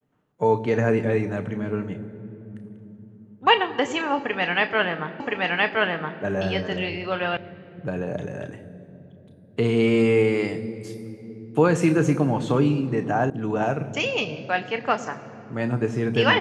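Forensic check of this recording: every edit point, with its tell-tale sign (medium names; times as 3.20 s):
5.20 s: repeat of the last 1.02 s
7.37 s: sound stops dead
13.30 s: sound stops dead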